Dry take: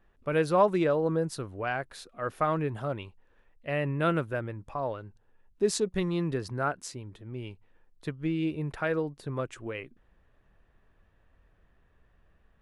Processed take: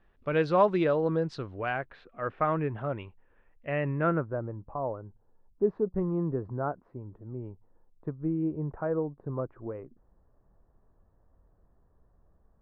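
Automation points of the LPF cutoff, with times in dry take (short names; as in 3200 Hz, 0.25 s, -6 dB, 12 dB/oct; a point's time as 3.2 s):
LPF 24 dB/oct
1.52 s 4700 Hz
1.96 s 2600 Hz
3.86 s 2600 Hz
4.39 s 1100 Hz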